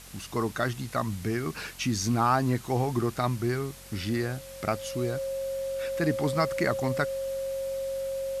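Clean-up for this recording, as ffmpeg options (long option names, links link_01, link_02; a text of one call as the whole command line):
ffmpeg -i in.wav -af "adeclick=threshold=4,bandreject=frequency=45.6:width_type=h:width=4,bandreject=frequency=91.2:width_type=h:width=4,bandreject=frequency=136.8:width_type=h:width=4,bandreject=frequency=182.4:width_type=h:width=4,bandreject=frequency=228:width_type=h:width=4,bandreject=frequency=540:width=30,afwtdn=0.0045" out.wav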